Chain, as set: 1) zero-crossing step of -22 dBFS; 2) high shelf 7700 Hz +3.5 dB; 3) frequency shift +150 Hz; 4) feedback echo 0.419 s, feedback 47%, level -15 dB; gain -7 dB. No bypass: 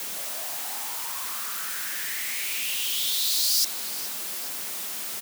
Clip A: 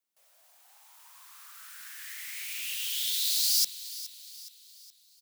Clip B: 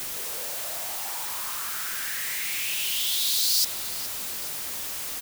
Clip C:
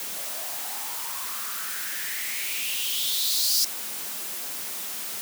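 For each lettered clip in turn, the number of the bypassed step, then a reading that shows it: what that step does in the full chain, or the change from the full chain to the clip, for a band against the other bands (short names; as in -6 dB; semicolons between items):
1, distortion -3 dB; 3, 500 Hz band +2.0 dB; 4, echo-to-direct -14.0 dB to none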